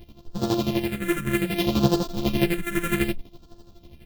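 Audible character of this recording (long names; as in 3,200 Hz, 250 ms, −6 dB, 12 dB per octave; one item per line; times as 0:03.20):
a buzz of ramps at a fixed pitch in blocks of 128 samples
phaser sweep stages 4, 0.63 Hz, lowest notch 780–2,100 Hz
chopped level 12 Hz, depth 65%, duty 35%
a shimmering, thickened sound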